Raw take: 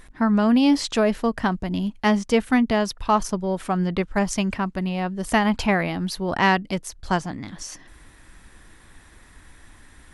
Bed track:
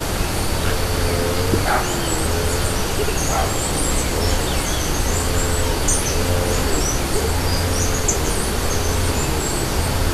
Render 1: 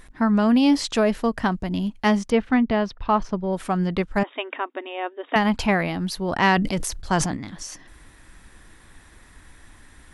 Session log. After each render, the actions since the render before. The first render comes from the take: 2.3–3.53 air absorption 220 m; 4.23–5.36 brick-wall FIR band-pass 260–3800 Hz; 6.51–7.37 sustainer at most 49 dB/s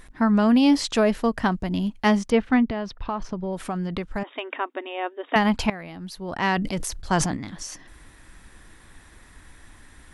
2.7–4.49 compressor 5:1, threshold -24 dBFS; 5.7–7.23 fade in, from -17.5 dB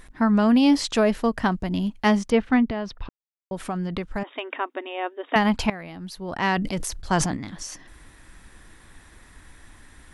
3.09–3.51 mute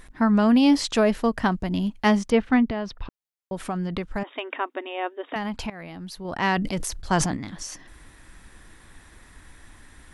5.33–6.25 compressor 2:1, threshold -33 dBFS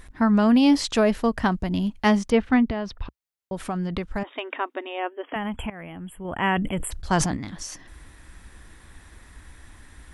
4.99–6.91 spectral delete 3400–7200 Hz; bell 62 Hz +6.5 dB 1.1 oct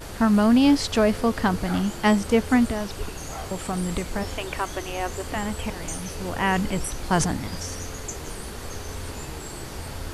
add bed track -15 dB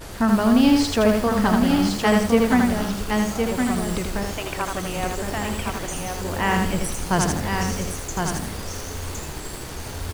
echo 1.063 s -4.5 dB; lo-fi delay 80 ms, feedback 35%, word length 6-bit, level -3 dB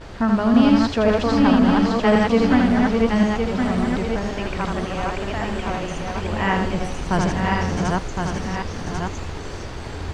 reverse delay 0.539 s, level -1.5 dB; air absorption 140 m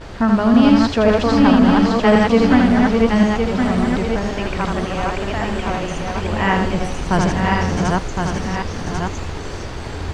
gain +3.5 dB; limiter -2 dBFS, peak gain reduction 1.5 dB

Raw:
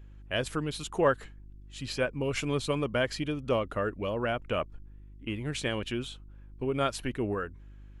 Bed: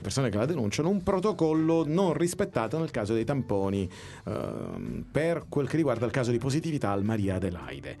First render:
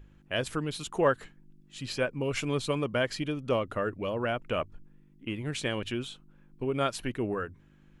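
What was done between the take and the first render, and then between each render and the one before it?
de-hum 50 Hz, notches 2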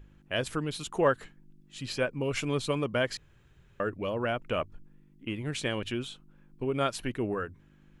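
3.17–3.8 room tone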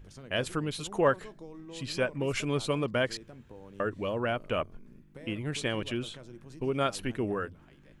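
add bed -21.5 dB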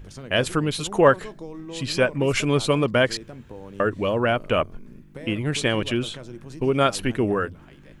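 gain +9 dB

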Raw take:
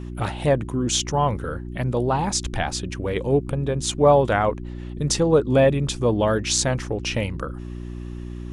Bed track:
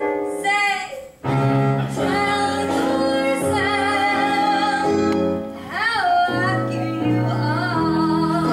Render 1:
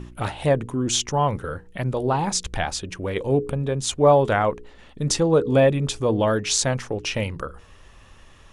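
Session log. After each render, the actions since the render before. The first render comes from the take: de-hum 60 Hz, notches 8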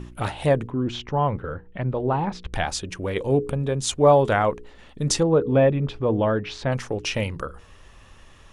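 0.67–2.53 air absorption 370 m; 5.23–6.72 air absorption 370 m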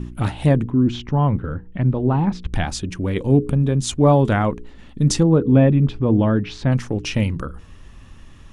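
resonant low shelf 360 Hz +7.5 dB, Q 1.5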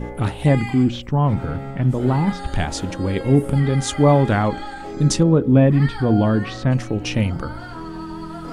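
add bed track -13.5 dB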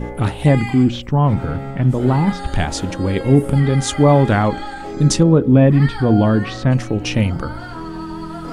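gain +3 dB; limiter -1 dBFS, peak gain reduction 2 dB

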